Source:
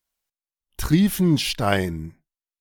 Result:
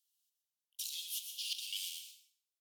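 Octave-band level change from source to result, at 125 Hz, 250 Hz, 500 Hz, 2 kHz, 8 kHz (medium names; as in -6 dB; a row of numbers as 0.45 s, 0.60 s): under -40 dB, under -40 dB, under -40 dB, -23.5 dB, -8.0 dB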